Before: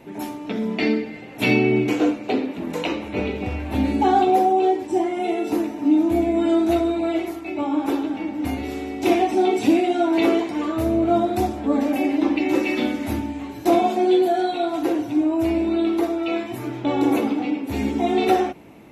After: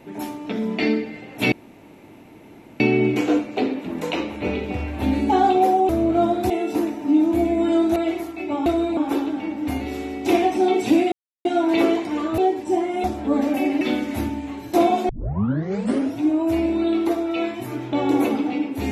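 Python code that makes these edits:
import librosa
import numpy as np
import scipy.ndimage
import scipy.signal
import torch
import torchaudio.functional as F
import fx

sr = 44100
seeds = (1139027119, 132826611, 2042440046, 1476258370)

y = fx.edit(x, sr, fx.insert_room_tone(at_s=1.52, length_s=1.28),
    fx.swap(start_s=4.61, length_s=0.66, other_s=10.82, other_length_s=0.61),
    fx.move(start_s=6.73, length_s=0.31, to_s=7.74),
    fx.insert_silence(at_s=9.89, length_s=0.33),
    fx.cut(start_s=12.2, length_s=0.53),
    fx.tape_start(start_s=14.01, length_s=1.1), tone=tone)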